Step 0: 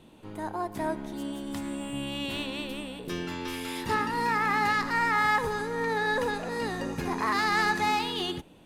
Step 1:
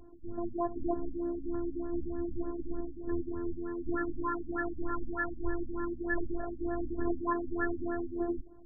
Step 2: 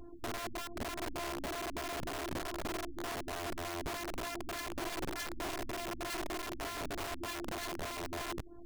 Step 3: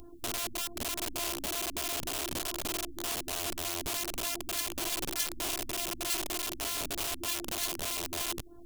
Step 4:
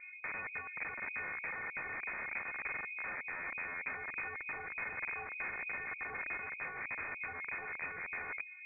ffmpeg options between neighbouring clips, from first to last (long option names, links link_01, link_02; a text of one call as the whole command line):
ffmpeg -i in.wav -af "aemphasis=mode=reproduction:type=bsi,afftfilt=real='hypot(re,im)*cos(PI*b)':imag='0':win_size=512:overlap=0.75,afftfilt=real='re*lt(b*sr/1024,290*pow(1900/290,0.5+0.5*sin(2*PI*3.3*pts/sr)))':imag='im*lt(b*sr/1024,290*pow(1900/290,0.5+0.5*sin(2*PI*3.3*pts/sr)))':win_size=1024:overlap=0.75" out.wav
ffmpeg -i in.wav -af "acompressor=threshold=-39dB:ratio=4,aeval=exprs='(mod(70.8*val(0)+1,2)-1)/70.8':channel_layout=same,volume=3dB" out.wav
ffmpeg -i in.wav -af "aexciter=amount=3.2:drive=4.9:freq=2600" out.wav
ffmpeg -i in.wav -af "lowpass=frequency=2100:width_type=q:width=0.5098,lowpass=frequency=2100:width_type=q:width=0.6013,lowpass=frequency=2100:width_type=q:width=0.9,lowpass=frequency=2100:width_type=q:width=2.563,afreqshift=-2500,volume=-1.5dB" out.wav